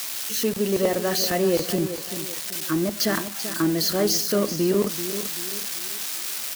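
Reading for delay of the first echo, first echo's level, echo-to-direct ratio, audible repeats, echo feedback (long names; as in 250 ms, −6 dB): 386 ms, −11.0 dB, −10.5 dB, 3, 39%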